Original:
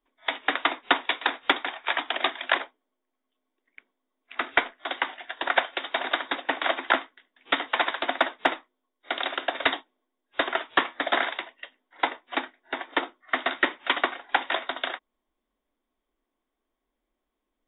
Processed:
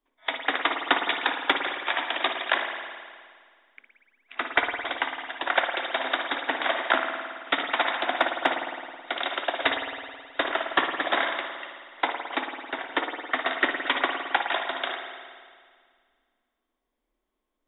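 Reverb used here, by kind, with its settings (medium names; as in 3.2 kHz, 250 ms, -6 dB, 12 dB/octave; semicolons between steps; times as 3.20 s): spring tank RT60 1.9 s, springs 53 ms, chirp 30 ms, DRR 3.5 dB; trim -1 dB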